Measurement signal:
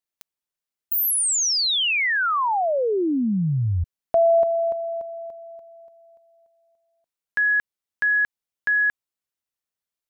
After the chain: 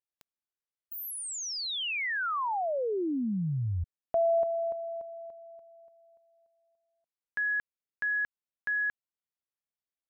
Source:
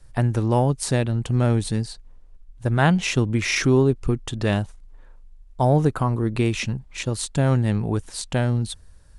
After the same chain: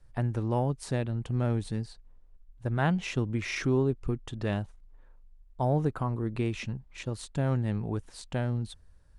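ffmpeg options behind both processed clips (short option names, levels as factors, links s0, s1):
-af "highshelf=f=4300:g=-9,volume=0.376"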